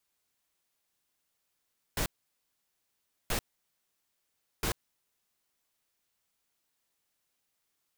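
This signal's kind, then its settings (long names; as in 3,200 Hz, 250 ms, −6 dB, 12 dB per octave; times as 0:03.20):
noise bursts pink, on 0.09 s, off 1.24 s, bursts 3, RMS −30.5 dBFS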